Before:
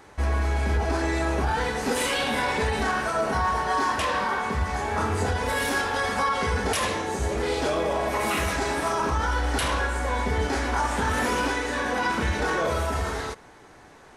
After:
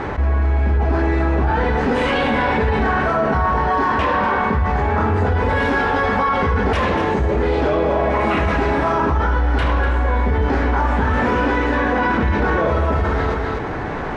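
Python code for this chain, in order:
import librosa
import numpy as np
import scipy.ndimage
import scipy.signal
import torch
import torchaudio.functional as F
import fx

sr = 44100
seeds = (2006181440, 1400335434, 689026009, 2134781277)

y = scipy.signal.sosfilt(scipy.signal.butter(2, 2300.0, 'lowpass', fs=sr, output='sos'), x)
y = fx.low_shelf(y, sr, hz=300.0, db=5.5)
y = y + 10.0 ** (-9.5 / 20.0) * np.pad(y, (int(245 * sr / 1000.0), 0))[:len(y)]
y = fx.env_flatten(y, sr, amount_pct=70)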